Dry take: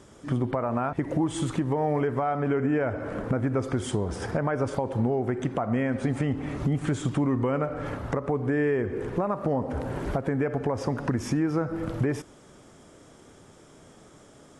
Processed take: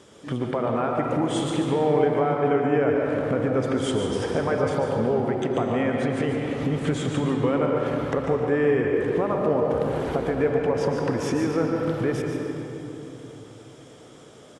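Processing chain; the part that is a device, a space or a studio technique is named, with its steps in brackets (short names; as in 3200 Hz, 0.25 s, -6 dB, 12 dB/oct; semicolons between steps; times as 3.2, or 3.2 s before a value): PA in a hall (HPF 140 Hz 6 dB/oct; bell 3300 Hz +6.5 dB 1 oct; echo 0.145 s -9 dB; reverb RT60 3.4 s, pre-delay 0.108 s, DRR 1.5 dB); bell 470 Hz +6 dB 0.33 oct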